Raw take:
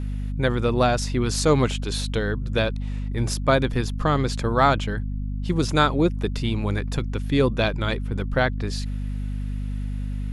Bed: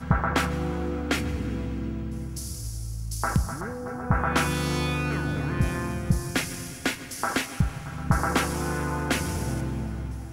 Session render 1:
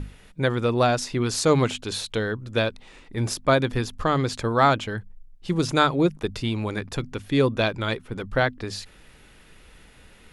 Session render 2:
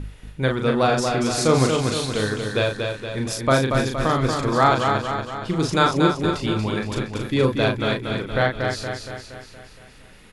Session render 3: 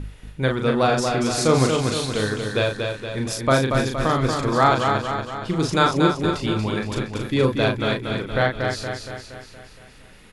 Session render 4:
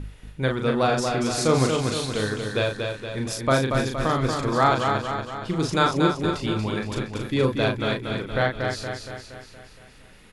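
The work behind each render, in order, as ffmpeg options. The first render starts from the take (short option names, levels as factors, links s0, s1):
-af "bandreject=f=50:t=h:w=6,bandreject=f=100:t=h:w=6,bandreject=f=150:t=h:w=6,bandreject=f=200:t=h:w=6,bandreject=f=250:t=h:w=6"
-filter_complex "[0:a]asplit=2[s0][s1];[s1]adelay=38,volume=0.596[s2];[s0][s2]amix=inputs=2:normalize=0,aecho=1:1:234|468|702|936|1170|1404|1638:0.562|0.309|0.17|0.0936|0.0515|0.0283|0.0156"
-af anull
-af "volume=0.75"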